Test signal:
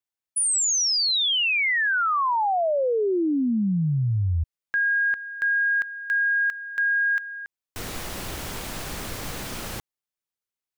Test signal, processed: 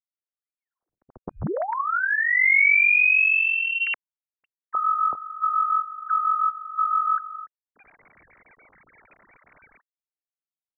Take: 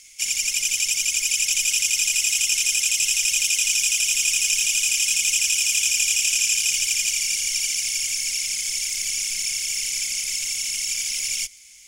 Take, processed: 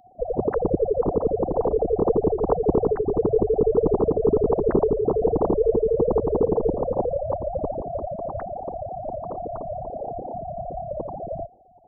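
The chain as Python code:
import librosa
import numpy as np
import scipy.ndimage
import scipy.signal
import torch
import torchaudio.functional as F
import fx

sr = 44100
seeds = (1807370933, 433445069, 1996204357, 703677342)

y = fx.sine_speech(x, sr)
y = fx.freq_invert(y, sr, carrier_hz=2900)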